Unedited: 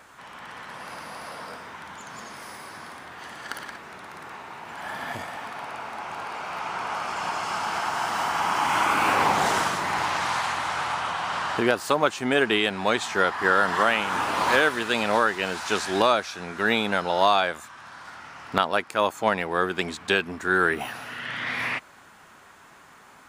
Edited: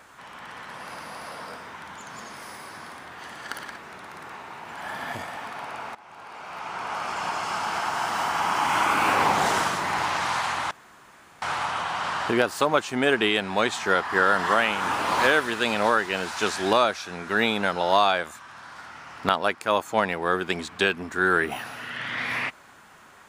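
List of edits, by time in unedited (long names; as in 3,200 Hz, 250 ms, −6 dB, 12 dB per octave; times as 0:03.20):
0:05.95–0:07.07: fade in, from −17 dB
0:10.71: splice in room tone 0.71 s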